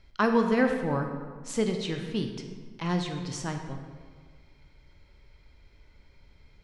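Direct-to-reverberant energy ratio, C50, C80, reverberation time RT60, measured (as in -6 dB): 4.5 dB, 6.0 dB, 7.0 dB, 1.7 s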